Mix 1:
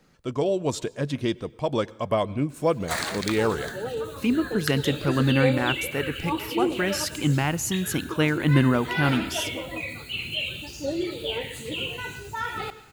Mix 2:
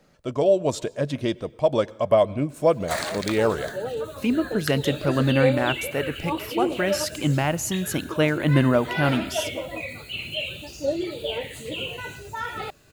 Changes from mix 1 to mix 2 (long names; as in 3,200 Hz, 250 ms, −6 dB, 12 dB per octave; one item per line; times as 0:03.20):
background: send off
master: add parametric band 610 Hz +9.5 dB 0.39 octaves